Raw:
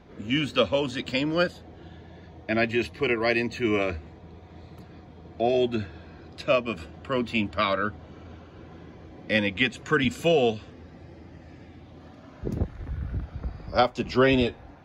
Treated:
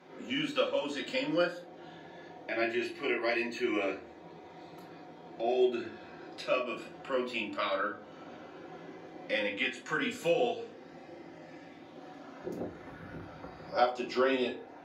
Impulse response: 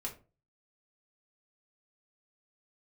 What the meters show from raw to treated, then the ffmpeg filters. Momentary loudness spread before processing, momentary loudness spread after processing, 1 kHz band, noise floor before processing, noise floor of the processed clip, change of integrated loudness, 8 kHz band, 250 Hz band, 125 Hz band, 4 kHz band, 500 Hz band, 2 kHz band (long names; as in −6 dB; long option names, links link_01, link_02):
15 LU, 20 LU, −5.5 dB, −48 dBFS, −51 dBFS, −6.5 dB, −5.0 dB, −8.0 dB, −18.0 dB, −7.0 dB, −6.0 dB, −6.5 dB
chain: -filter_complex "[0:a]highpass=340,acompressor=threshold=-43dB:ratio=1.5[link_01];[1:a]atrim=start_sample=2205,asetrate=31752,aresample=44100[link_02];[link_01][link_02]afir=irnorm=-1:irlink=0"